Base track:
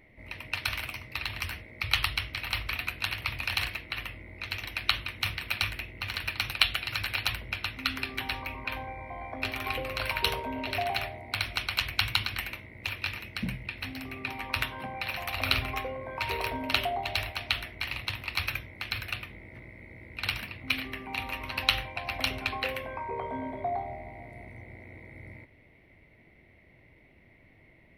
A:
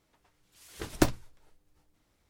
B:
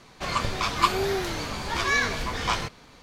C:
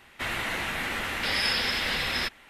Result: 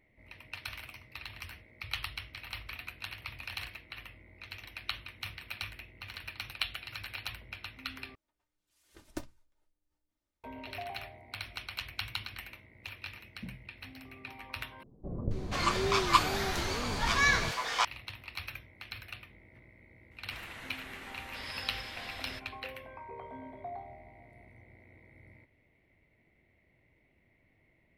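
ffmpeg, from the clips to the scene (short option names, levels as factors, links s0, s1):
-filter_complex "[0:a]volume=0.299[s0];[1:a]aecho=1:1:3.3:0.42[s1];[2:a]acrossover=split=480[s2][s3];[s3]adelay=480[s4];[s2][s4]amix=inputs=2:normalize=0[s5];[s0]asplit=3[s6][s7][s8];[s6]atrim=end=8.154[s9];[s1]atrim=end=2.29,asetpts=PTS-STARTPTS,volume=0.126[s10];[s7]atrim=start=10.436:end=14.834[s11];[s5]atrim=end=3.02,asetpts=PTS-STARTPTS,volume=0.794[s12];[s8]atrim=start=17.846[s13];[3:a]atrim=end=2.49,asetpts=PTS-STARTPTS,volume=0.158,afade=t=in:d=0.004:c=hsin,afade=t=out:st=2.486:d=0.004:c=hsin,adelay=20110[s14];[s9][s10]acrossfade=d=0.004:c1=hsin:c2=hsin[s15];[s15][s11]acrossfade=d=0.004:c1=hsin:c2=hsin[s16];[s16][s12]acrossfade=d=0.004:c1=hsin:c2=hsin[s17];[s17][s13]acrossfade=d=0.004:c1=hsin:c2=hsin[s18];[s18][s14]amix=inputs=2:normalize=0"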